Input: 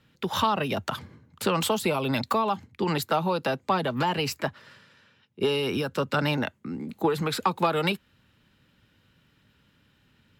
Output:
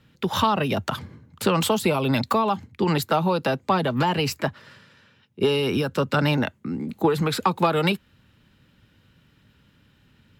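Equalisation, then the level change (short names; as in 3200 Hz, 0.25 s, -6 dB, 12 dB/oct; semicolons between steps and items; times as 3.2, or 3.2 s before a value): low shelf 280 Hz +4.5 dB; +2.5 dB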